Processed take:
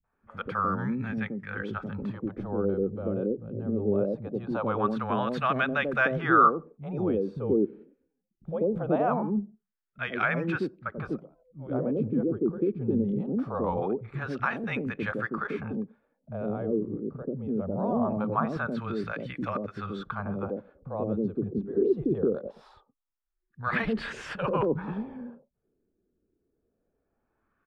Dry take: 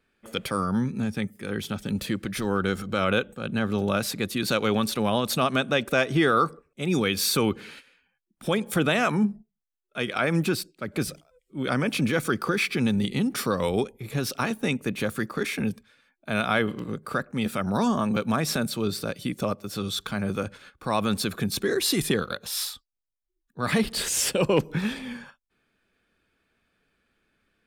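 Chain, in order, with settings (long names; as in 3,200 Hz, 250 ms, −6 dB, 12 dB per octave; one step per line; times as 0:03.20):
three-band delay without the direct sound lows, highs, mids 40/130 ms, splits 170/570 Hz
dynamic equaliser 2,000 Hz, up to −6 dB, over −46 dBFS, Q 3.3
auto-filter low-pass sine 0.22 Hz 370–1,900 Hz
level −2.5 dB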